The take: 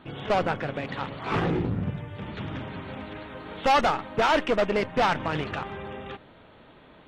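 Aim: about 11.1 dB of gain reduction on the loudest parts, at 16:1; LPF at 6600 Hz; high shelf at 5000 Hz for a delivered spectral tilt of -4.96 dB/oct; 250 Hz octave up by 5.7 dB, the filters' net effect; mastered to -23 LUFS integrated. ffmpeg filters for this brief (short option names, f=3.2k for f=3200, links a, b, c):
-af "lowpass=6.6k,equalizer=f=250:t=o:g=7.5,highshelf=f=5k:g=4,acompressor=threshold=-28dB:ratio=16,volume=11dB"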